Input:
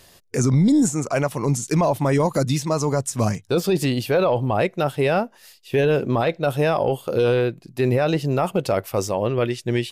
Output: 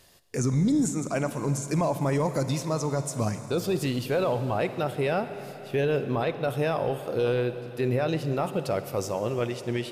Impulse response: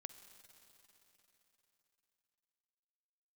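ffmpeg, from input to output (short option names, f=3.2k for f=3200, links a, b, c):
-filter_complex "[1:a]atrim=start_sample=2205[a];[0:a][a]afir=irnorm=-1:irlink=0,volume=-1dB"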